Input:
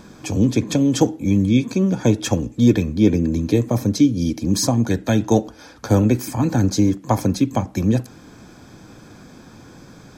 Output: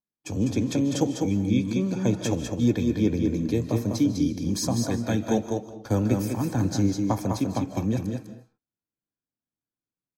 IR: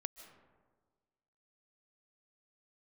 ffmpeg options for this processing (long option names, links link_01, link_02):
-filter_complex "[0:a]agate=range=-48dB:threshold=-31dB:ratio=16:detection=peak,aecho=1:1:201:0.562[link_01];[1:a]atrim=start_sample=2205,afade=type=out:start_time=0.31:duration=0.01,atrim=end_sample=14112[link_02];[link_01][link_02]afir=irnorm=-1:irlink=0,volume=-5dB"